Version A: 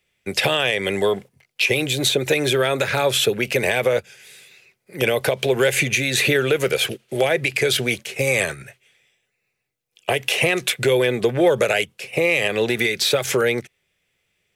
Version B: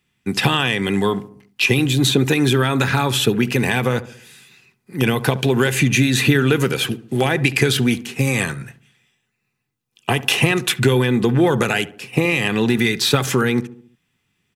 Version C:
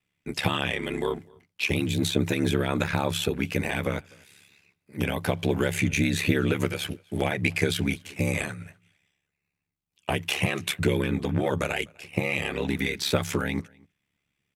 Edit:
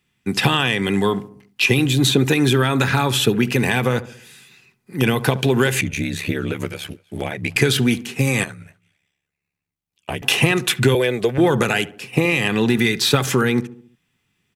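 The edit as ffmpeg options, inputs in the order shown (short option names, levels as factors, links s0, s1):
-filter_complex "[2:a]asplit=2[s0][s1];[1:a]asplit=4[s2][s3][s4][s5];[s2]atrim=end=5.812[s6];[s0]atrim=start=5.808:end=7.562[s7];[s3]atrim=start=7.558:end=8.442[s8];[s1]atrim=start=8.438:end=10.222[s9];[s4]atrim=start=10.218:end=10.952[s10];[0:a]atrim=start=10.948:end=11.382[s11];[s5]atrim=start=11.378[s12];[s6][s7]acrossfade=d=0.004:c1=hsin:c2=hsin[s13];[s13][s8]acrossfade=d=0.004:c1=hsin:c2=hsin[s14];[s14][s9]acrossfade=d=0.004:c1=hsin:c2=hsin[s15];[s15][s10]acrossfade=d=0.004:c1=hsin:c2=hsin[s16];[s16][s11]acrossfade=d=0.004:c1=hsin:c2=hsin[s17];[s17][s12]acrossfade=d=0.004:c1=hsin:c2=hsin"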